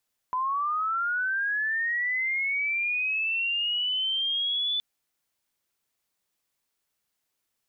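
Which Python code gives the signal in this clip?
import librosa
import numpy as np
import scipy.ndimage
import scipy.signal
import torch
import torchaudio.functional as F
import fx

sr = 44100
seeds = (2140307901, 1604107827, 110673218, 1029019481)

y = fx.chirp(sr, length_s=4.47, from_hz=1000.0, to_hz=3500.0, law='linear', from_db=-24.5, to_db=-24.5)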